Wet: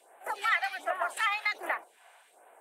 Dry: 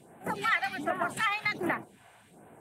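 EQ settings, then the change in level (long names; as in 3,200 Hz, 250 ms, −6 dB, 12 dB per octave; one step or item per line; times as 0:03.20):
high-pass filter 530 Hz 24 dB per octave
0.0 dB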